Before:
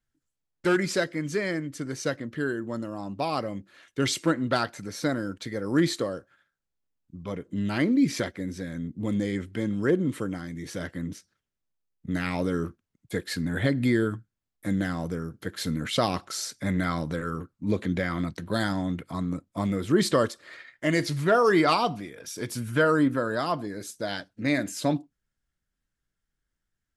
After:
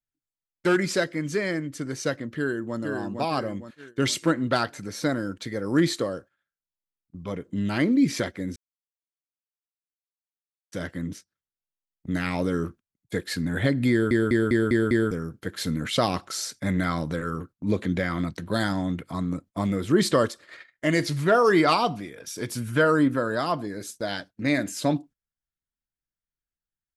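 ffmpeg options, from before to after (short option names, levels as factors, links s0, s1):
-filter_complex "[0:a]asplit=2[s0][s1];[s1]afade=t=in:st=2.38:d=0.01,afade=t=out:st=2.78:d=0.01,aecho=0:1:460|920|1380|1840|2300|2760:0.595662|0.268048|0.120622|0.0542797|0.0244259|0.0109916[s2];[s0][s2]amix=inputs=2:normalize=0,asplit=9[s3][s4][s5][s6][s7][s8][s9][s10][s11];[s3]atrim=end=8.56,asetpts=PTS-STARTPTS,afade=t=out:st=8.556:d=0.004:c=hsin[s12];[s4]atrim=start=8.56:end=10.72,asetpts=PTS-STARTPTS,volume=0[s13];[s5]atrim=start=10.72:end=14.112,asetpts=PTS-STARTPTS,afade=t=in:d=0.004:c=hsin[s14];[s6]atrim=start=13.908:end=14.112[s15];[s7]atrim=start=13.908:end=14.112[s16];[s8]atrim=start=13.908:end=14.112[s17];[s9]atrim=start=13.908:end=14.112[s18];[s10]atrim=start=13.908:end=14.112[s19];[s11]atrim=start=15.108[s20];[s12][s13][s14]concat=n=3:v=0:a=1[s21];[s21][s15]acrossfade=d=0.004:c1=hsin:c2=hsin[s22];[s22][s16]acrossfade=d=0.004:c1=hsin:c2=hsin[s23];[s23][s17]acrossfade=d=0.004:c1=hsin:c2=hsin[s24];[s24][s18]acrossfade=d=0.004:c1=hsin:c2=hsin[s25];[s25][s19]acrossfade=d=0.004:c1=hsin:c2=hsin[s26];[s26][s20]acrossfade=d=0.004:c1=hsin:c2=hsin,agate=range=0.178:threshold=0.00562:ratio=16:detection=peak,volume=1.19"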